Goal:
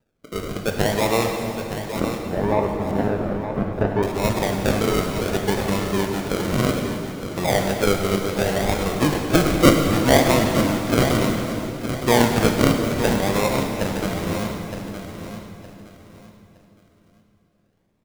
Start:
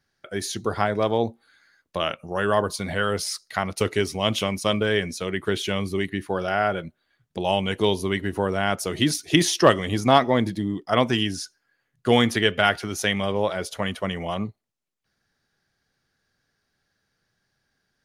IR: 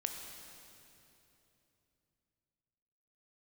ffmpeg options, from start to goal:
-filter_complex "[0:a]acrusher=samples=40:mix=1:aa=0.000001:lfo=1:lforange=24:lforate=0.65,asettb=1/sr,asplit=3[s0][s1][s2];[s0]atrim=end=2.004[s3];[s1]atrim=start=2:end=4.03,asetpts=PTS-STARTPTS,afade=t=in:d=0.004:c=qsin,afade=t=out:st=2.026:d=0.004:c=qsin,lowpass=1300[s4];[s2]atrim=start=4.026[s5];[s3][s4]acrossfade=d=0.004:c1=hsin:c2=qsin[s6];[s6][s5]acrossfade=d=0.004:c1=qsin:c2=hsin,aecho=1:1:915|1830|2745:0.335|0.0871|0.0226[s7];[1:a]atrim=start_sample=2205[s8];[s7][s8]afir=irnorm=-1:irlink=0,volume=1.26"

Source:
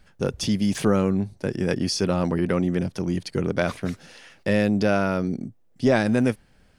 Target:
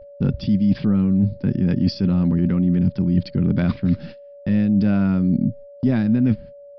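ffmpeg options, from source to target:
-filter_complex "[0:a]asplit=2[s0][s1];[s1]alimiter=limit=0.133:level=0:latency=1:release=32,volume=0.841[s2];[s0][s2]amix=inputs=2:normalize=0,lowshelf=f=330:t=q:w=1.5:g=12.5,areverse,acompressor=threshold=0.224:ratio=6,areverse,aresample=11025,aresample=44100,agate=range=0.02:threshold=0.0251:ratio=16:detection=peak,aeval=exprs='val(0)+0.0141*sin(2*PI*570*n/s)':c=same,volume=0.75"

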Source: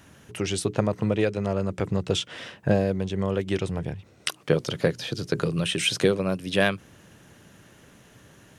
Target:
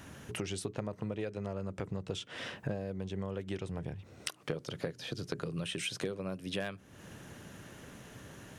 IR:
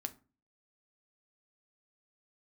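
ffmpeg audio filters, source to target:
-filter_complex "[0:a]asplit=2[s0][s1];[1:a]atrim=start_sample=2205,lowpass=2500[s2];[s1][s2]afir=irnorm=-1:irlink=0,volume=0.237[s3];[s0][s3]amix=inputs=2:normalize=0,asoftclip=type=hard:threshold=0.422,acompressor=threshold=0.0126:ratio=4,volume=1.12"

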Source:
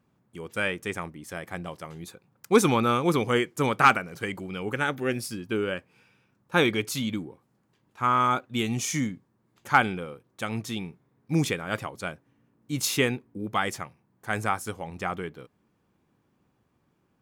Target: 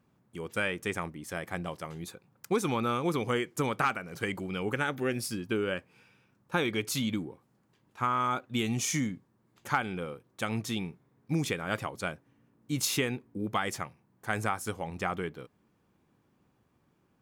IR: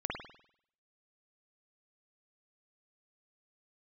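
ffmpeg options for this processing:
-af "acompressor=threshold=0.0501:ratio=4"

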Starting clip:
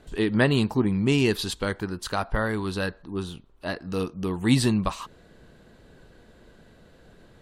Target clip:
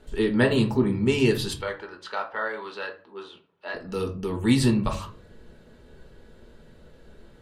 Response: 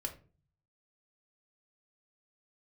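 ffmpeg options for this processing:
-filter_complex "[0:a]asettb=1/sr,asplit=3[s0][s1][s2];[s0]atrim=end=1.614[s3];[s1]atrim=start=1.61:end=3.74,asetpts=PTS-STARTPTS,afade=t=in:d=0.004:c=qsin,afade=t=out:st=2.126:d=0.004:c=qsin,highpass=620,lowpass=3400[s4];[s2]atrim=start=3.736[s5];[s3][s4]acrossfade=d=0.004:c1=hsin:c2=qsin[s6];[s6][s5]acrossfade=d=0.004:c1=qsin:c2=hsin[s7];[1:a]atrim=start_sample=2205[s8];[s7][s8]afir=irnorm=-1:irlink=0"

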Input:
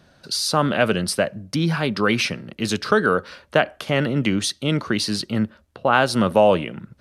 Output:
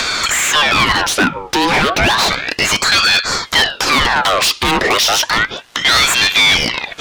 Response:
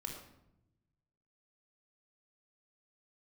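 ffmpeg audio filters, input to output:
-filter_complex "[0:a]highpass=f=390:p=1,highshelf=f=8300:g=-11,acompressor=mode=upward:threshold=0.0891:ratio=2.5,asetnsamples=n=441:p=0,asendcmd='3.14 lowpass f 7200',asplit=2[s0][s1];[s1]highpass=f=720:p=1,volume=50.1,asoftclip=type=tanh:threshold=0.841[s2];[s0][s2]amix=inputs=2:normalize=0,lowpass=f=3800:p=1,volume=0.501,aeval=exprs='val(0)*sin(2*PI*1800*n/s+1800*0.65/0.32*sin(2*PI*0.32*n/s))':c=same"

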